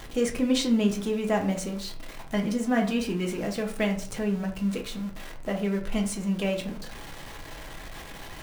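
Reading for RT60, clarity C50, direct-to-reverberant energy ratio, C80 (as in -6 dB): 0.45 s, 10.5 dB, 1.5 dB, 14.5 dB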